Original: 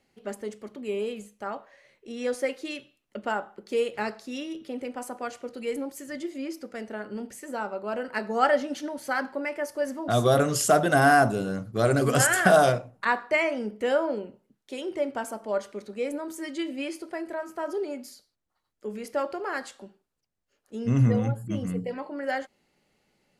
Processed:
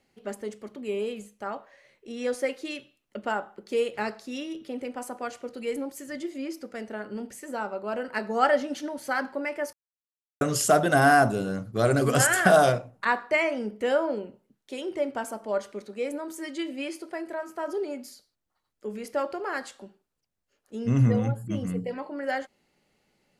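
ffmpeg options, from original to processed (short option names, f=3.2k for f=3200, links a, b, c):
-filter_complex "[0:a]asettb=1/sr,asplit=3[a][b][c];[a]atrim=end=15.824[d];[b]atrim=start=15.82:end=17.68,asetpts=PTS-STARTPTS,afade=t=in:d=0.004:c=qsin,afade=t=out:st=1.856:d=0.004:c=qsin,lowshelf=f=120:g=-8.5[e];[c]atrim=start=17.676[f];[d][e]acrossfade=d=0.004:c1=hsin:c2=qsin[g];[g][f]acrossfade=d=0.004:c1=qsin:c2=hsin,asplit=3[h][i][j];[h]atrim=end=9.73,asetpts=PTS-STARTPTS,afade=t=out:st=9.726:d=0.004:c=hsin[k];[i]atrim=start=9.73:end=10.41,asetpts=PTS-STARTPTS,volume=0[l];[j]atrim=start=10.41,asetpts=PTS-STARTPTS,afade=t=in:d=0.004:c=hsin[m];[k][l][m]concat=n=3:v=0:a=1"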